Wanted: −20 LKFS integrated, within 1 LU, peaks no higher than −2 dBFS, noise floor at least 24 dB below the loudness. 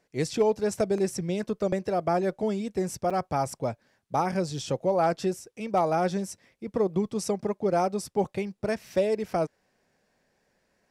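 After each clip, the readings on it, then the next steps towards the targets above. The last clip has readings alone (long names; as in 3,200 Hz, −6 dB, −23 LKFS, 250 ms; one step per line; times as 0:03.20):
number of dropouts 1; longest dropout 5.8 ms; integrated loudness −28.0 LKFS; sample peak −14.5 dBFS; target loudness −20.0 LKFS
→ repair the gap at 0:03.10, 5.8 ms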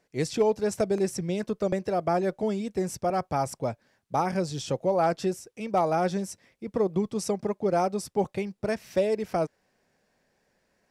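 number of dropouts 0; integrated loudness −28.0 LKFS; sample peak −14.5 dBFS; target loudness −20.0 LKFS
→ level +8 dB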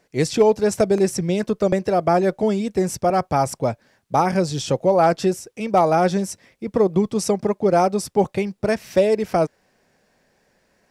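integrated loudness −20.5 LKFS; sample peak −6.5 dBFS; background noise floor −65 dBFS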